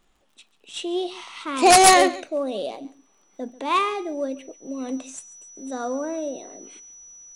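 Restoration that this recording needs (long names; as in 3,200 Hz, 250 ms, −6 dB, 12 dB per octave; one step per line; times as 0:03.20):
click removal
notch filter 5,900 Hz, Q 30
echo removal 140 ms −18.5 dB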